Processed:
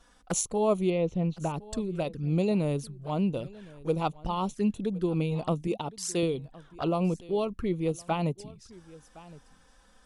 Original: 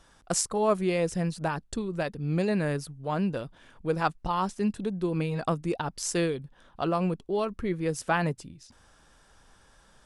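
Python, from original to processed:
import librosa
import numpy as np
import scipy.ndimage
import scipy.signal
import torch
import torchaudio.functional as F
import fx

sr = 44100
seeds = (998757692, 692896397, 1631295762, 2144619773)

y = fx.env_flanger(x, sr, rest_ms=4.4, full_db=-26.5)
y = fx.air_absorb(y, sr, metres=230.0, at=(0.9, 1.54))
y = fx.highpass(y, sr, hz=190.0, slope=6, at=(5.67, 6.23))
y = y + 10.0 ** (-21.0 / 20.0) * np.pad(y, (int(1064 * sr / 1000.0), 0))[:len(y)]
y = fx.upward_expand(y, sr, threshold_db=-35.0, expansion=1.5, at=(7.92, 8.38))
y = y * 10.0 ** (1.0 / 20.0)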